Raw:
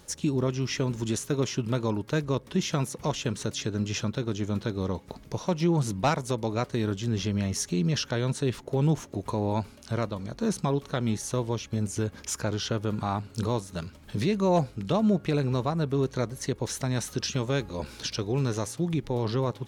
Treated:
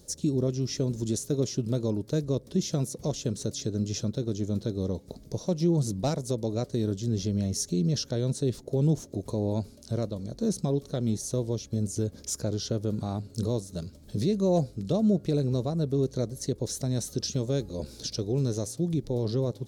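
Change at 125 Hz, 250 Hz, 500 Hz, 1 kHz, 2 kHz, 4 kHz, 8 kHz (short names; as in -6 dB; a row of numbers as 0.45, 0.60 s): 0.0, 0.0, -0.5, -9.5, -14.0, -3.0, 0.0 dB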